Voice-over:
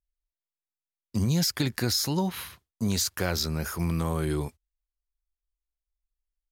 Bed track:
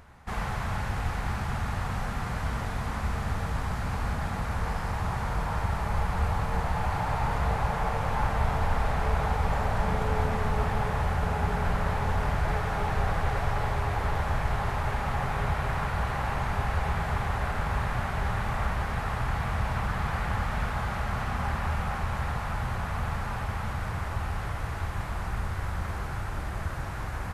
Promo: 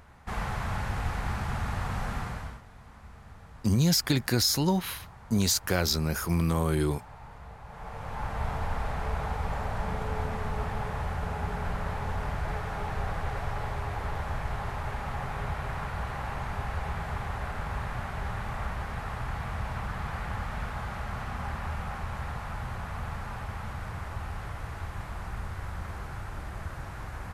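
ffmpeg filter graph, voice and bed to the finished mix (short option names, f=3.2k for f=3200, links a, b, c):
-filter_complex "[0:a]adelay=2500,volume=1.5dB[a];[1:a]volume=13dB,afade=t=out:st=2.16:d=0.45:silence=0.125893,afade=t=in:st=7.65:d=0.82:silence=0.199526[b];[a][b]amix=inputs=2:normalize=0"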